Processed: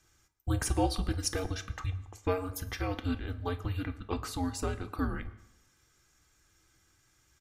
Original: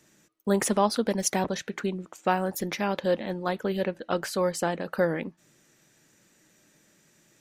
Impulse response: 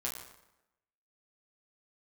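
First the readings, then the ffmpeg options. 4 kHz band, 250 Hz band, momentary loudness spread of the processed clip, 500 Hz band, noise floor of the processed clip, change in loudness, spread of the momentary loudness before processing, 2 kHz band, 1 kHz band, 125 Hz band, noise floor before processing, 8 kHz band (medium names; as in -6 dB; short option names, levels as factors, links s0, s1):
-4.5 dB, -6.0 dB, 7 LU, -10.5 dB, -69 dBFS, -6.5 dB, 7 LU, -8.0 dB, -9.0 dB, +1.5 dB, -64 dBFS, -6.5 dB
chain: -filter_complex "[0:a]afreqshift=-280,aecho=1:1:2.5:0.41,asplit=2[s0][s1];[1:a]atrim=start_sample=2205[s2];[s1][s2]afir=irnorm=-1:irlink=0,volume=0.376[s3];[s0][s3]amix=inputs=2:normalize=0,volume=0.376"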